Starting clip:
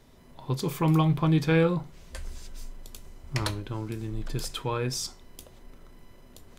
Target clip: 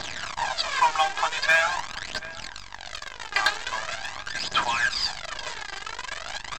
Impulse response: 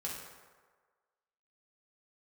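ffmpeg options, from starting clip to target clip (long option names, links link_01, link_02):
-filter_complex "[0:a]aeval=exprs='val(0)+0.5*0.0282*sgn(val(0))':channel_layout=same,afftfilt=real='re*between(b*sr/4096,600,5100)':imag='im*between(b*sr/4096,600,5100)':win_size=4096:overlap=0.75,equalizer=frequency=1600:width_type=o:width=0.21:gain=14,bandreject=frequency=1500:width=12,acontrast=56,aresample=16000,acrusher=bits=6:dc=4:mix=0:aa=0.000001,aresample=44100,aphaser=in_gain=1:out_gain=1:delay=2.6:decay=0.59:speed=0.43:type=triangular,asoftclip=type=hard:threshold=-11.5dB,asplit=2[link_01][link_02];[link_02]adelay=731,lowpass=frequency=2000:poles=1,volume=-18dB,asplit=2[link_03][link_04];[link_04]adelay=731,lowpass=frequency=2000:poles=1,volume=0.2[link_05];[link_03][link_05]amix=inputs=2:normalize=0[link_06];[link_01][link_06]amix=inputs=2:normalize=0" -ar 48000 -c:a aac -b:a 128k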